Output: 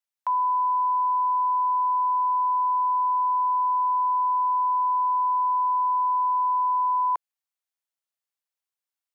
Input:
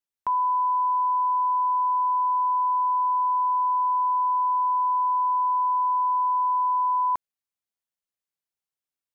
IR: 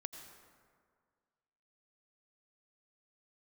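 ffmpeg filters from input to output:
-af "highpass=frequency=550:width=0.5412,highpass=frequency=550:width=1.3066"

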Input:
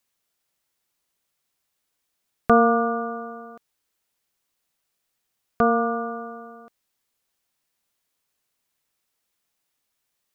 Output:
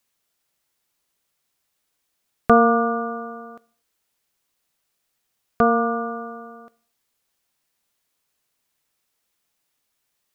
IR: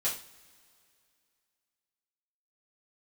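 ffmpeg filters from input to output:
-filter_complex "[0:a]asplit=2[link_01][link_02];[1:a]atrim=start_sample=2205,afade=type=out:start_time=0.24:duration=0.01,atrim=end_sample=11025,asetrate=33516,aresample=44100[link_03];[link_02][link_03]afir=irnorm=-1:irlink=0,volume=-23.5dB[link_04];[link_01][link_04]amix=inputs=2:normalize=0,volume=2dB"

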